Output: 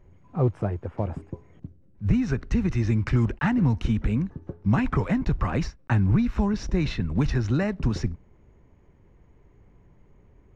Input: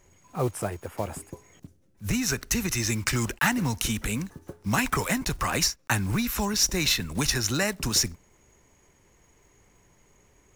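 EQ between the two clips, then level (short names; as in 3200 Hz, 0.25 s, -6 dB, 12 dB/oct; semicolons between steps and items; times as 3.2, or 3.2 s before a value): tape spacing loss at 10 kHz 36 dB; low shelf 320 Hz +9 dB; 0.0 dB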